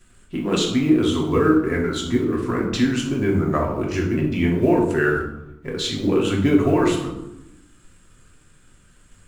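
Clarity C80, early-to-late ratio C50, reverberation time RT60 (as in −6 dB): 8.0 dB, 4.5 dB, 0.90 s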